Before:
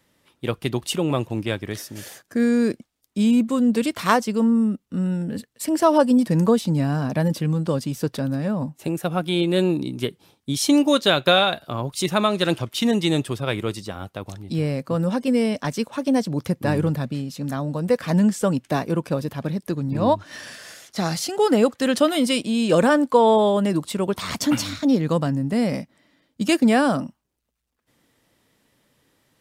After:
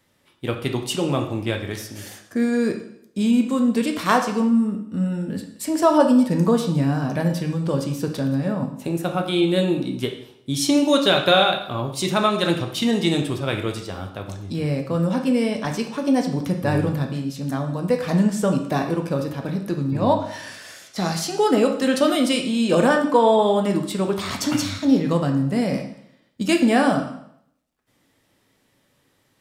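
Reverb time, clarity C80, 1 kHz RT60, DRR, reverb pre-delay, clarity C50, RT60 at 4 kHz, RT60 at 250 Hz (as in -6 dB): 0.75 s, 11.0 dB, 0.70 s, 3.0 dB, 5 ms, 8.0 dB, 0.65 s, 0.70 s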